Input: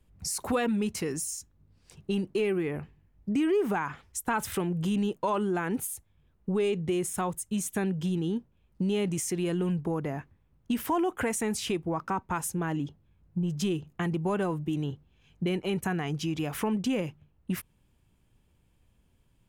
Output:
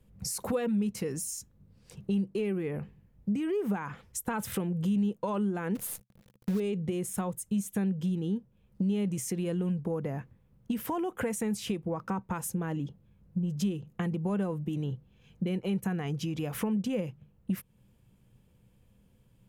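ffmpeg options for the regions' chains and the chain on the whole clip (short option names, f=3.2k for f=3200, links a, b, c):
-filter_complex "[0:a]asettb=1/sr,asplit=3[a][b][c];[a]atrim=end=5.754[d];[b]atrim=start=5.75:end=6.6,asetpts=PTS-STARTPTS,afade=t=in:d=0.004:c=qsin,afade=t=out:st=0.846:d=0.004:c=qsin,asuperstop=centerf=840:order=12:qfactor=6.1,acrusher=bits=7:dc=4:mix=0:aa=0.000001[e];[c]atrim=start=6.596[f];[d][e]acrossfade=d=0.004:c1=hsin:c2=qsin[g];[g][f]acrossfade=d=0.004:c1=qsin:c2=hsin,equalizer=f=125:t=o:w=0.33:g=10,equalizer=f=200:t=o:w=0.33:g=11,equalizer=f=500:t=o:w=0.33:g=9,equalizer=f=12.5k:t=o:w=0.33:g=5,acompressor=threshold=-34dB:ratio=2"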